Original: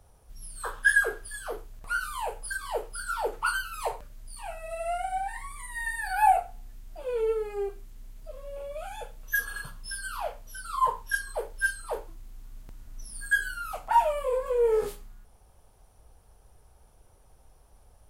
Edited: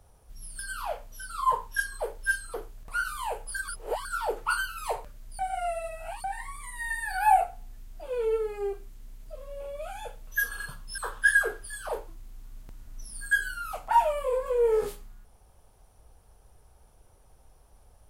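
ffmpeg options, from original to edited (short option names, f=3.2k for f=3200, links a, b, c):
-filter_complex "[0:a]asplit=9[a][b][c][d][e][f][g][h][i];[a]atrim=end=0.592[j];[b]atrim=start=9.938:end=11.892[k];[c]atrim=start=1.498:end=2.642[l];[d]atrim=start=2.638:end=3.012,asetpts=PTS-STARTPTS,areverse[m];[e]atrim=start=3.008:end=4.352[n];[f]atrim=start=4.348:end=5.202,asetpts=PTS-STARTPTS,areverse[o];[g]atrim=start=5.198:end=9.942[p];[h]atrim=start=0.588:end=1.502[q];[i]atrim=start=11.888[r];[j][k]acrossfade=d=0.004:c1=hsin:c2=hsin[s];[s][l]acrossfade=d=0.004:c1=hsin:c2=hsin[t];[t][m]acrossfade=d=0.004:c1=hsin:c2=hsin[u];[u][n]acrossfade=d=0.004:c1=hsin:c2=hsin[v];[v][o]acrossfade=d=0.004:c1=hsin:c2=hsin[w];[w][p]acrossfade=d=0.004:c1=hsin:c2=hsin[x];[x][q]acrossfade=d=0.004:c1=hsin:c2=hsin[y];[y][r]acrossfade=d=0.004:c1=hsin:c2=hsin"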